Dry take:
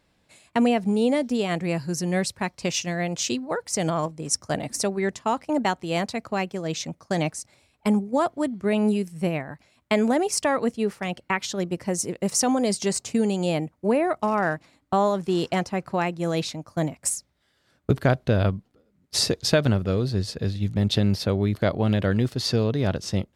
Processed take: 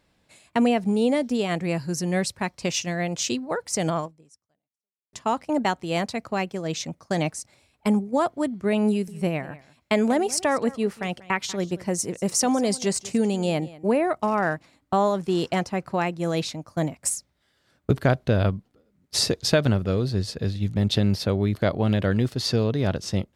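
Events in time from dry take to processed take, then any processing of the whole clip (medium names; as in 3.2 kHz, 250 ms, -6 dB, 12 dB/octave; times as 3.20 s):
3.97–5.13 s: fade out exponential
8.89–13.90 s: delay 190 ms -19.5 dB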